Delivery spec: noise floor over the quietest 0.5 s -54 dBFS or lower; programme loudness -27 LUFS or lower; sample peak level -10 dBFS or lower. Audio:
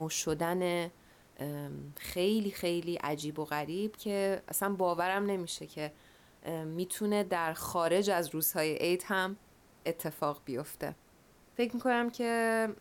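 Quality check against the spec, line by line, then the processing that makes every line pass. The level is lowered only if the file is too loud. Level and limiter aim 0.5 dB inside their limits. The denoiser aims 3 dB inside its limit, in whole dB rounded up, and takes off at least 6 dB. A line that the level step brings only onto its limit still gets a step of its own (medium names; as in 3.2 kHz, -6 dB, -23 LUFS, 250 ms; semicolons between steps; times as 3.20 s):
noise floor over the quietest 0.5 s -62 dBFS: pass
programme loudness -33.5 LUFS: pass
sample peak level -18.5 dBFS: pass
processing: none needed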